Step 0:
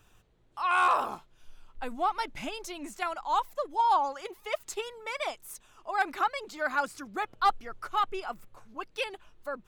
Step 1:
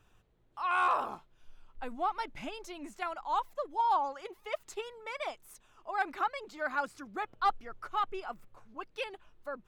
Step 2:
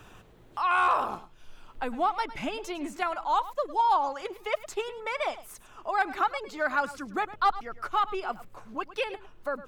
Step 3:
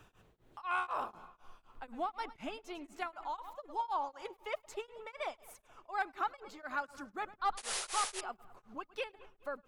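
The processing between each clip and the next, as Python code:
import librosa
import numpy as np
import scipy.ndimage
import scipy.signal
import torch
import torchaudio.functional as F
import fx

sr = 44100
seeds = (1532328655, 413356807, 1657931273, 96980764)

y1 = fx.high_shelf(x, sr, hz=4500.0, db=-8.0)
y1 = y1 * 10.0 ** (-3.5 / 20.0)
y2 = y1 + 10.0 ** (-16.5 / 20.0) * np.pad(y1, (int(105 * sr / 1000.0), 0))[:len(y1)]
y2 = fx.band_squash(y2, sr, depth_pct=40)
y2 = y2 * 10.0 ** (6.0 / 20.0)
y3 = fx.echo_wet_lowpass(y2, sr, ms=211, feedback_pct=55, hz=3200.0, wet_db=-21)
y3 = fx.spec_paint(y3, sr, seeds[0], shape='noise', start_s=7.57, length_s=0.64, low_hz=370.0, high_hz=11000.0, level_db=-28.0)
y3 = y3 * np.abs(np.cos(np.pi * 4.0 * np.arange(len(y3)) / sr))
y3 = y3 * 10.0 ** (-8.5 / 20.0)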